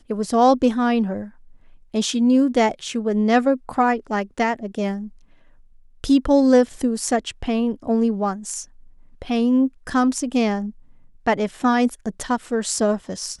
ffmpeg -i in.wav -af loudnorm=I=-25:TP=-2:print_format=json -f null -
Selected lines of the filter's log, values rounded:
"input_i" : "-21.0",
"input_tp" : "-4.9",
"input_lra" : "3.1",
"input_thresh" : "-31.7",